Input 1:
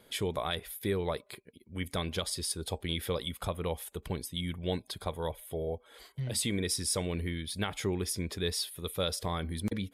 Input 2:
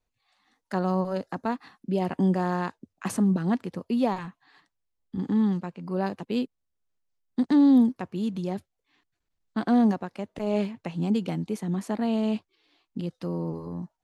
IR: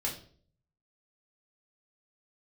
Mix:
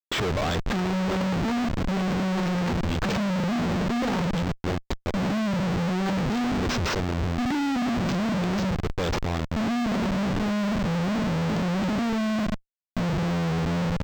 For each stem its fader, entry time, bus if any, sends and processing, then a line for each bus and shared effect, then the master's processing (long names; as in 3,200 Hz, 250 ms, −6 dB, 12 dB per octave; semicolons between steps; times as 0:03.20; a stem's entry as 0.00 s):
+3.0 dB, 0.00 s, no send, automatic ducking −12 dB, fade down 1.35 s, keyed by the second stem
−6.5 dB, 0.00 s, send −5.5 dB, noise gate −52 dBFS, range −11 dB; bass and treble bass +12 dB, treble +1 dB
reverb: on, RT60 0.50 s, pre-delay 5 ms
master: compressor whose output falls as the input rises −20 dBFS, ratio −0.5; comparator with hysteresis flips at −39 dBFS; linearly interpolated sample-rate reduction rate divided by 4×